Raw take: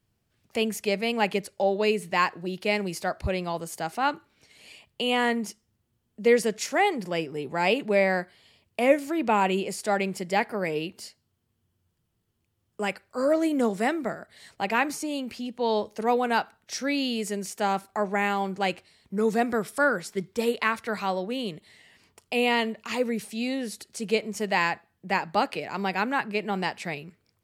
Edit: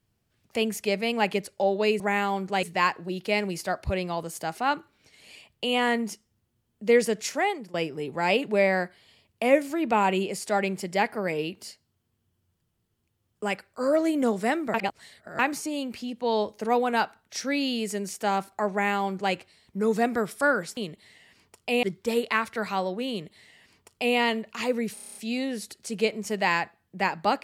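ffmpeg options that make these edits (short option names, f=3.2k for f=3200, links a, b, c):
-filter_complex "[0:a]asplit=15[a][b][c][d][e][f][g][h][i][j][k][l][m][n][o];[a]atrim=end=2.002[p];[b]atrim=start=18.078:end=18.712[q];[c]atrim=start=1.998:end=7.11,asetpts=PTS-STARTPTS,afade=t=out:st=4.662:d=0.45:silence=0.16788[r];[d]atrim=start=7.11:end=14.112,asetpts=PTS-STARTPTS,afade=t=in:d=0.004:c=hsin:silence=0.16788[s];[e]atrim=start=14.108:end=14.762,asetpts=PTS-STARTPTS,areverse[t];[f]atrim=start=14.758:end=20.142[u];[g]atrim=start=21.408:end=22.472[v];[h]atrim=start=20.138:end=23.282[w];[i]atrim=start=23.248:end=23.282[x];[j]atrim=start=23.248:end=23.282[y];[k]atrim=start=23.248:end=23.282[z];[l]atrim=start=23.248:end=23.282[aa];[m]atrim=start=23.248:end=23.282[ab];[n]atrim=start=23.248:end=23.282[ac];[o]atrim=start=23.248[ad];[p][q]acrossfade=d=0.004:c1=hsin:c2=hsin[ae];[r][s]concat=n=2:v=0:a=1[af];[ae][af]acrossfade=d=0.004:c1=hsin:c2=hsin[ag];[ag][t]acrossfade=d=0.004:c1=hsin:c2=hsin[ah];[ah][u]acrossfade=d=0.004:c1=hsin:c2=hsin[ai];[ai][v]acrossfade=d=0.004:c1=hsin:c2=hsin[aj];[aj][w]acrossfade=d=0.004:c1=hsin:c2=hsin[ak];[ak][x]acrossfade=d=0.004:c1=hsin:c2=hsin[al];[al][y]acrossfade=d=0.004:c1=hsin:c2=hsin[am];[am][z]acrossfade=d=0.004:c1=hsin:c2=hsin[an];[an][aa]acrossfade=d=0.004:c1=hsin:c2=hsin[ao];[ao][ab]acrossfade=d=0.004:c1=hsin:c2=hsin[ap];[ap][ac]acrossfade=d=0.004:c1=hsin:c2=hsin[aq];[aq][ad]acrossfade=d=0.004:c1=hsin:c2=hsin"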